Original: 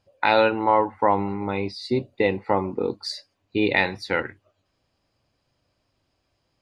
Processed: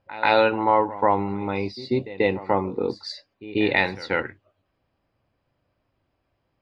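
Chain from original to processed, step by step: pre-echo 138 ms -16.5 dB; level-controlled noise filter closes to 2.4 kHz, open at -17 dBFS

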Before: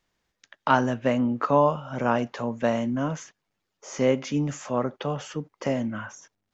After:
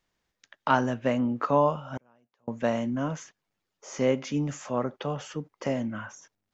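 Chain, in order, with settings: 1.97–2.48 s: inverted gate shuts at -27 dBFS, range -37 dB; trim -2.5 dB

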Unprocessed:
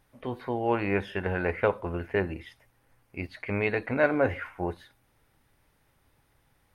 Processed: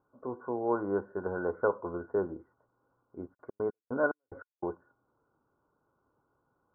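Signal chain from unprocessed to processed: high-pass 220 Hz 6 dB/octave; 3.33–4.65 s: trance gate "..xx..x..x.x" 146 bpm -60 dB; rippled Chebyshev low-pass 1.5 kHz, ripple 6 dB

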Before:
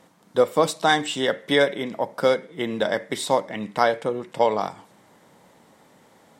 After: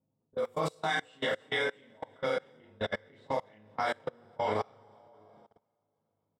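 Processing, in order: short-time spectra conjugated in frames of 75 ms; hum notches 60/120/180/240/300/360/420/480/540 Hz; feedback delay 667 ms, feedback 26%, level -16 dB; level-controlled noise filter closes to 390 Hz, open at -21 dBFS; peaking EQ 93 Hz +15 dB 0.54 oct; two-slope reverb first 0.24 s, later 3.5 s, from -20 dB, DRR 0 dB; dynamic bell 2.2 kHz, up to +6 dB, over -39 dBFS, Q 1.4; level held to a coarse grid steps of 23 dB; upward expansion 1.5:1, over -34 dBFS; trim -6 dB

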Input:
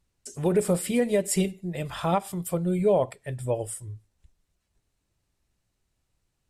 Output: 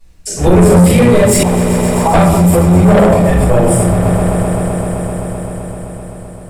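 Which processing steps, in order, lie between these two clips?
octave divider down 1 oct, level -5 dB; simulated room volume 220 m³, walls mixed, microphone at 6.1 m; saturation -7 dBFS, distortion -9 dB; 1.43–2.14 s: Butterworth band-pass 850 Hz, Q 2.3; echo with a slow build-up 129 ms, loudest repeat 5, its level -17.5 dB; peak limiter -11 dBFS, peak gain reduction 7 dB; trim +8.5 dB

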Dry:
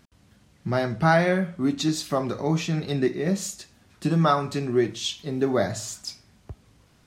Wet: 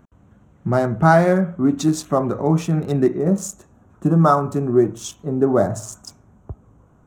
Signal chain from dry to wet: local Wiener filter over 9 samples; high-order bell 2.9 kHz -9.5 dB, from 3.17 s -16 dB; trim +6.5 dB

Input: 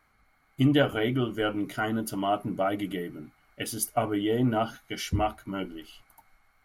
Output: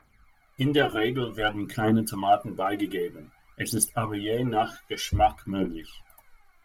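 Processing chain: phaser 0.53 Hz, delay 3 ms, feedback 67%

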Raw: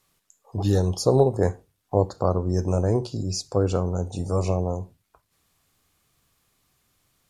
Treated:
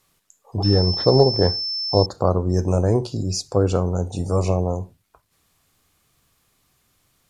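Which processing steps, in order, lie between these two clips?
0.63–2.06 s: class-D stage that switches slowly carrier 5.3 kHz; trim +3.5 dB

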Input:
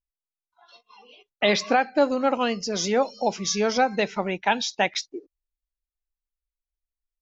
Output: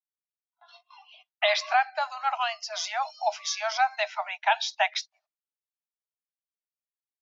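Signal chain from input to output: low-pass 5.1 kHz 12 dB/octave; gate with hold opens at -48 dBFS; Chebyshev high-pass 620 Hz, order 10

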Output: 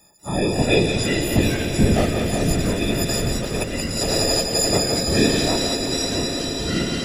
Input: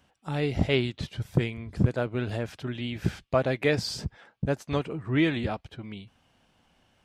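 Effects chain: partials quantised in pitch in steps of 6 st; high-order bell 2 kHz -10.5 dB 2.3 oct; whisper effect; echo with a slow build-up 85 ms, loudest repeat 8, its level -17 dB; 2.81–4.71 s: compressor with a negative ratio -31 dBFS, ratio -0.5; treble shelf 4.3 kHz +6 dB; two-band feedback delay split 540 Hz, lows 81 ms, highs 175 ms, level -6.5 dB; ever faster or slower copies 193 ms, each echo -4 st, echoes 3, each echo -6 dB; trim +5.5 dB

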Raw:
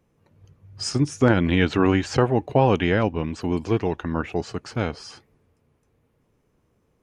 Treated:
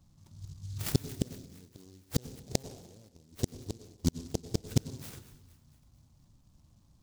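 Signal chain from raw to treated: bass shelf 180 Hz +7.5 dB; touch-sensitive phaser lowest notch 430 Hz, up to 1.4 kHz, full sweep at -24.5 dBFS; inverted gate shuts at -14 dBFS, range -40 dB; in parallel at -12 dB: decimation with a swept rate 28×, swing 60% 1.3 Hz; on the sum: feedback echo behind a high-pass 230 ms, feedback 51%, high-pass 5.5 kHz, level -9.5 dB; on a send at -13 dB: reverberation RT60 1.1 s, pre-delay 83 ms; on the sum: delay time shaken by noise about 5.3 kHz, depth 0.15 ms

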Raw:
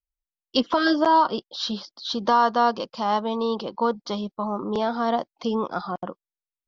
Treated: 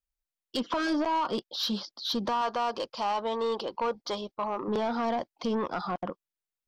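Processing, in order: 2.41–4.68 s: peaking EQ 190 Hz -12 dB 0.89 oct; peak limiter -16.5 dBFS, peak gain reduction 8 dB; saturation -22.5 dBFS, distortion -14 dB

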